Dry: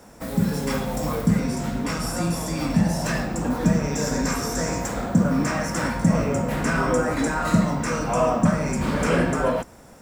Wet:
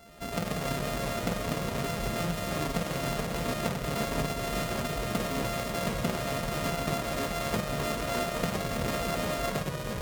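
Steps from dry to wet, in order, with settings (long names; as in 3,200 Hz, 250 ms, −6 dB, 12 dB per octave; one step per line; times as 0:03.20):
samples sorted by size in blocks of 64 samples
downward compressor, threshold −23 dBFS, peak gain reduction 10 dB
reverb reduction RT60 0.6 s
delay with pitch and tempo change per echo 89 ms, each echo −2 semitones, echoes 3
level −5 dB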